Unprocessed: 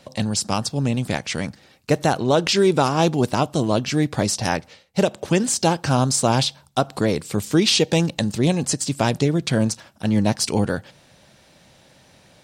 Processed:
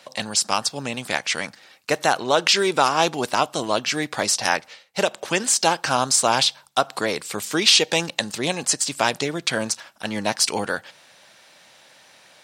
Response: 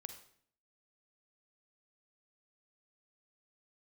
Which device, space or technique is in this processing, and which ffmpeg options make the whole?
filter by subtraction: -filter_complex "[0:a]asplit=2[a][b];[b]lowpass=1.4k,volume=-1[c];[a][c]amix=inputs=2:normalize=0,volume=3dB"

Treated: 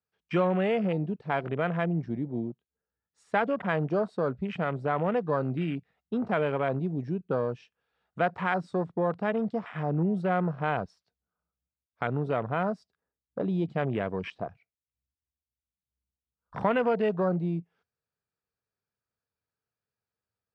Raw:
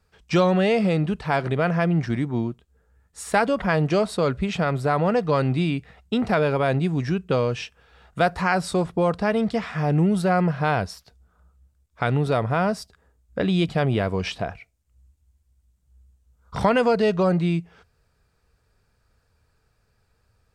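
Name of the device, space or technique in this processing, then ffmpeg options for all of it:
over-cleaned archive recording: -af "highpass=140,lowpass=5.8k,afwtdn=0.0282,volume=-6dB"

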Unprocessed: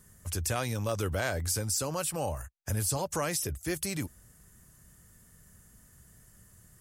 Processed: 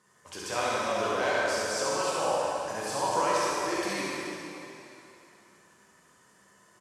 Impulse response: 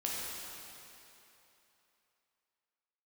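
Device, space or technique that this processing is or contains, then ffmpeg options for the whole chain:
station announcement: -filter_complex "[0:a]highpass=350,lowpass=4.9k,equalizer=f=1k:t=o:w=0.23:g=9,aecho=1:1:67.06|148.7:0.708|0.355[a];[1:a]atrim=start_sample=2205[b];[a][b]afir=irnorm=-1:irlink=0"

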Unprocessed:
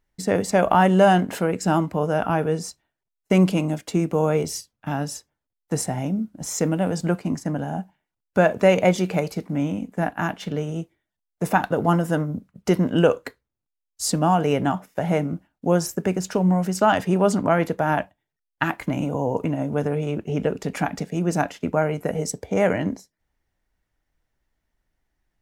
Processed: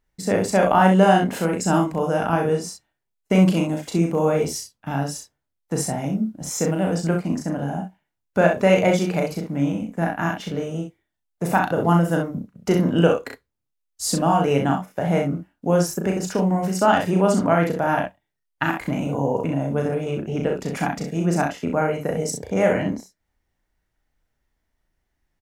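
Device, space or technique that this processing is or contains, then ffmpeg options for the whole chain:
slapback doubling: -filter_complex "[0:a]asettb=1/sr,asplit=3[a][b][c];[a]atrim=end=1.374[d];[b]atrim=start=1.37:end=2.57,asetpts=PTS-STARTPTS,afade=t=in:d=0.004:c=qsin,afade=t=out:st=1.196:d=0.004:c=qsin,equalizer=f=8k:t=o:w=1.1:g=4.5[e];[c]atrim=start=2.566[f];[d][e]acrossfade=d=0.004:c1=hsin:c2=qsin[g];[g][f]acrossfade=d=0.004:c1=qsin:c2=hsin,asplit=3[h][i][j];[i]adelay=36,volume=-4dB[k];[j]adelay=64,volume=-6dB[l];[h][k][l]amix=inputs=3:normalize=0,volume=-1dB"

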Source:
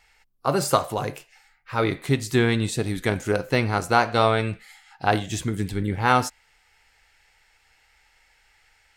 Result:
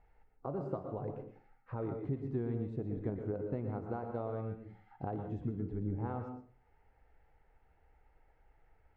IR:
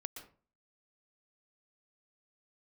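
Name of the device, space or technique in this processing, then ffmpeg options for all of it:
television next door: -filter_complex "[0:a]acompressor=threshold=-39dB:ratio=3,lowpass=590[a];[1:a]atrim=start_sample=2205[b];[a][b]afir=irnorm=-1:irlink=0,volume=5dB"

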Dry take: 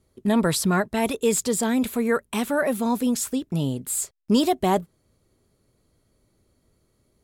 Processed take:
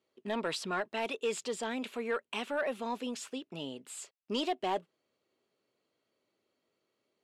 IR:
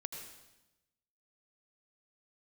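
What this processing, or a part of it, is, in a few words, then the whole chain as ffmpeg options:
intercom: -af "highpass=380,lowpass=4.9k,equalizer=f=2.8k:t=o:w=0.41:g=8,asoftclip=type=tanh:threshold=-14.5dB,volume=-8dB"

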